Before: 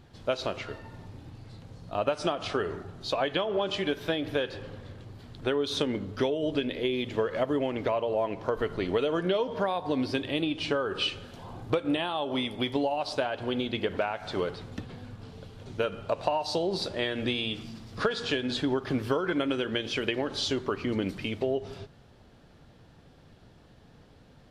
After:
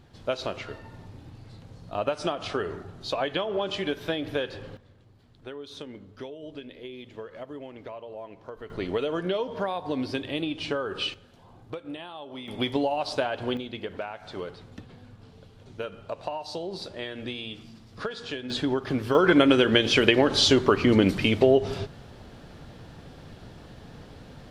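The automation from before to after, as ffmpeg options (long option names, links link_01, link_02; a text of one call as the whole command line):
ffmpeg -i in.wav -af "asetnsamples=nb_out_samples=441:pad=0,asendcmd='4.77 volume volume -12dB;8.7 volume volume -1dB;11.14 volume volume -10dB;12.48 volume volume 2dB;13.57 volume volume -5.5dB;18.5 volume volume 1.5dB;19.15 volume volume 10dB',volume=0dB" out.wav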